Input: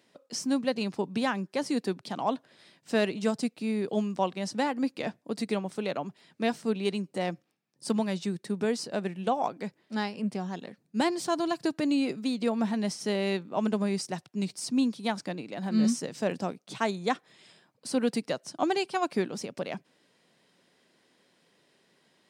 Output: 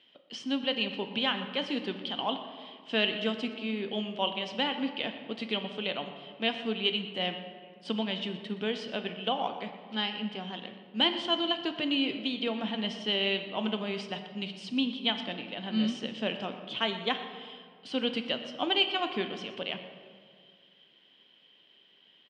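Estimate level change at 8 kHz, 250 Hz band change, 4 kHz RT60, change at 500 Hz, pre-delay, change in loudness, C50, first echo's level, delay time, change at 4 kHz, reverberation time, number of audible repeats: under -15 dB, -4.5 dB, 1.1 s, -3.5 dB, 3 ms, -1.0 dB, 8.5 dB, -16.0 dB, 0.121 s, +10.0 dB, 2.0 s, 1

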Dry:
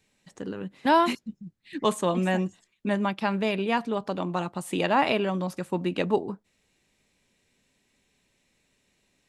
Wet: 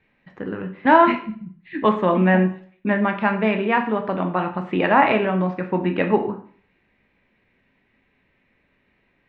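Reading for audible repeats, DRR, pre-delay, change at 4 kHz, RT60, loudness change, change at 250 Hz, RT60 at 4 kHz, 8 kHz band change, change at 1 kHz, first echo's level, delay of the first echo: none, 5.0 dB, 6 ms, -1.5 dB, 0.50 s, +7.0 dB, +7.0 dB, 0.45 s, under -25 dB, +7.5 dB, none, none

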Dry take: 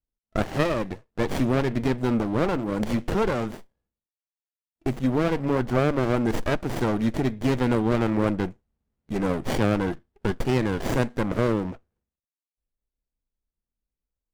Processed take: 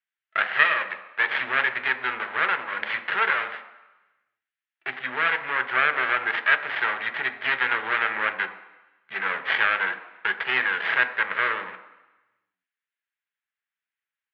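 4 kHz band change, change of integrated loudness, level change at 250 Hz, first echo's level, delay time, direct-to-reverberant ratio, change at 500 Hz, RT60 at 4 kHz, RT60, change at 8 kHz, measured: +6.5 dB, +1.5 dB, -22.5 dB, none, none, 6.5 dB, -11.0 dB, 1.1 s, 1.0 s, under -25 dB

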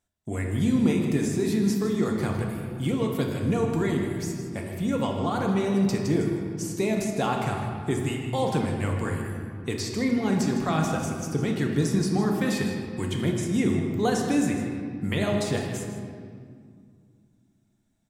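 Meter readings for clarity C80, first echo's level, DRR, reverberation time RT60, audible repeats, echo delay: 4.0 dB, -11.5 dB, 0.5 dB, 2.2 s, 1, 0.157 s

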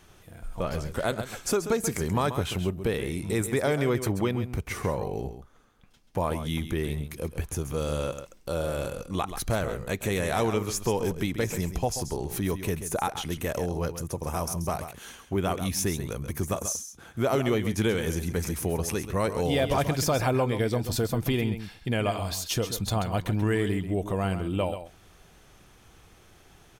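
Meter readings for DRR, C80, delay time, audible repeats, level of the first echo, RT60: none, none, 0.134 s, 1, -10.5 dB, none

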